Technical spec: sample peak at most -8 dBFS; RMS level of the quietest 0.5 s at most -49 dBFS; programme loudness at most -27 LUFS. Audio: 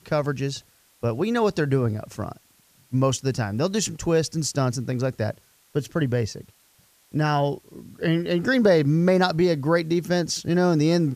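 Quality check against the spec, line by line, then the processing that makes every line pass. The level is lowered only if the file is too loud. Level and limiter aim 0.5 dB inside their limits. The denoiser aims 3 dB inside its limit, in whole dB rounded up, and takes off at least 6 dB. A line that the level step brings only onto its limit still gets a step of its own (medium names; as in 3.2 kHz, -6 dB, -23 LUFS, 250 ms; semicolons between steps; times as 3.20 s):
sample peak -6.5 dBFS: fail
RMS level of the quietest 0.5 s -60 dBFS: pass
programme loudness -23.5 LUFS: fail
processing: trim -4 dB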